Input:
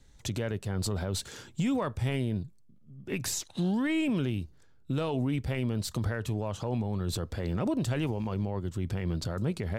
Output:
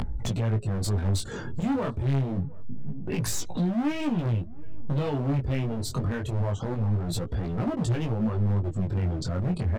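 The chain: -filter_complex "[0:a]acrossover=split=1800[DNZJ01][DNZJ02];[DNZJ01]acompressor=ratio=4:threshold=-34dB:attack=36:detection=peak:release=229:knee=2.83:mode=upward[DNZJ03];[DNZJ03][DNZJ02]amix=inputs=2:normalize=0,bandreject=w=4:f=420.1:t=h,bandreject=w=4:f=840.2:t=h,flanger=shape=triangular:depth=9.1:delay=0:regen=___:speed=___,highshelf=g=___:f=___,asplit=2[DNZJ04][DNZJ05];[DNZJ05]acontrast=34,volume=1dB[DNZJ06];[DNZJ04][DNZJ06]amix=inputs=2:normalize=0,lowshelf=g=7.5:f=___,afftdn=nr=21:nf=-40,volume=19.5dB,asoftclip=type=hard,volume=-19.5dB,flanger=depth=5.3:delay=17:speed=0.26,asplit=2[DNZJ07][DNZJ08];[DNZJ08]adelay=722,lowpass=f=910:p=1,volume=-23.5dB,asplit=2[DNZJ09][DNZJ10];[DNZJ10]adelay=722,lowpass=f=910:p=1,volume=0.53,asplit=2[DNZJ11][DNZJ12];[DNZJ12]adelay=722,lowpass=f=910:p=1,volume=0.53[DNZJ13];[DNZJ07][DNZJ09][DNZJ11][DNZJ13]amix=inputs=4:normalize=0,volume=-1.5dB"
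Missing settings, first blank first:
45, 0.94, 3, 8.1k, 320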